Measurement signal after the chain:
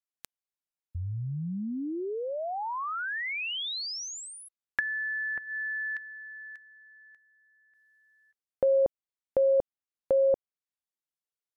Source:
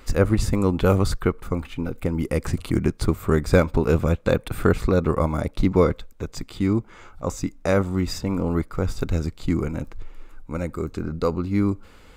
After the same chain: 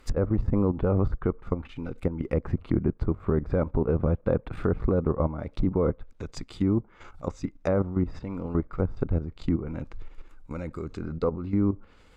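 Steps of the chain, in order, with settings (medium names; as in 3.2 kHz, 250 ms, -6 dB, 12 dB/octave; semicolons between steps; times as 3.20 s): level held to a coarse grid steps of 11 dB; low-pass that closes with the level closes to 1 kHz, closed at -23 dBFS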